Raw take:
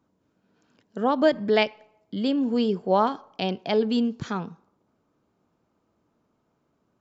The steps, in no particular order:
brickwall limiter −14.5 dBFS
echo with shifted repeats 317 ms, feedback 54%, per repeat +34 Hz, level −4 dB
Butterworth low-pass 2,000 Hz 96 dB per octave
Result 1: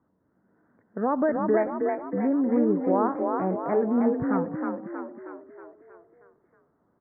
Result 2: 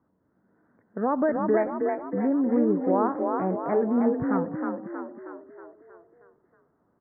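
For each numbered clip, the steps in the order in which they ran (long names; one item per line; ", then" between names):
brickwall limiter, then Butterworth low-pass, then echo with shifted repeats
brickwall limiter, then echo with shifted repeats, then Butterworth low-pass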